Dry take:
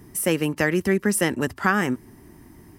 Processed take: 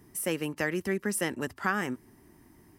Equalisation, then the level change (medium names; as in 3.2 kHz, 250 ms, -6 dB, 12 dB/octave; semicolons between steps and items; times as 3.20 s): bass shelf 240 Hz -4.5 dB; -7.5 dB